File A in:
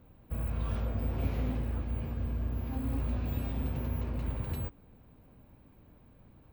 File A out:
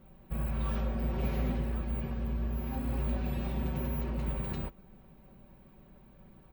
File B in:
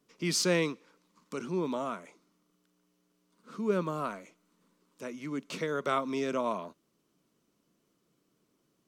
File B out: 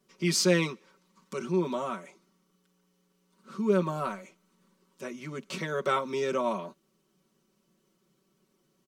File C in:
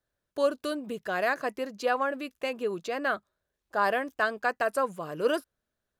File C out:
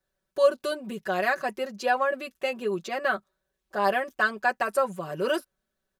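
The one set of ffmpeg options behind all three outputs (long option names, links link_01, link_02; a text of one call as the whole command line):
ffmpeg -i in.wav -af "aecho=1:1:5.3:0.9" out.wav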